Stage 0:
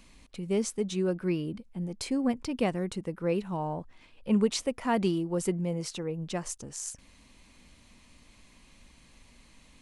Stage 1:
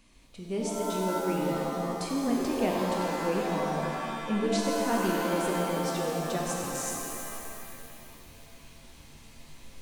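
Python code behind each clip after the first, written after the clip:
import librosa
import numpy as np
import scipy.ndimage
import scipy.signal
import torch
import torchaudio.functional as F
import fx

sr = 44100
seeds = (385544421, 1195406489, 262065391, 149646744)

y = fx.rider(x, sr, range_db=4, speed_s=2.0)
y = fx.rev_shimmer(y, sr, seeds[0], rt60_s=2.4, semitones=7, shimmer_db=-2, drr_db=-1.5)
y = y * 10.0 ** (-4.5 / 20.0)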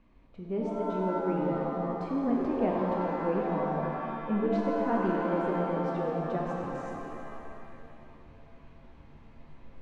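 y = scipy.signal.sosfilt(scipy.signal.butter(2, 1400.0, 'lowpass', fs=sr, output='sos'), x)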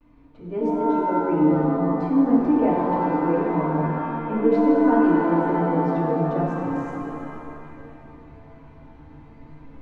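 y = fx.vibrato(x, sr, rate_hz=0.31, depth_cents=27.0)
y = fx.rev_fdn(y, sr, rt60_s=0.3, lf_ratio=1.3, hf_ratio=0.3, size_ms=20.0, drr_db=-4.5)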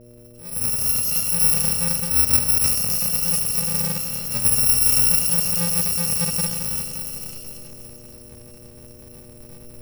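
y = fx.bit_reversed(x, sr, seeds[1], block=128)
y = fx.dmg_buzz(y, sr, base_hz=120.0, harmonics=5, level_db=-47.0, tilt_db=-2, odd_only=False)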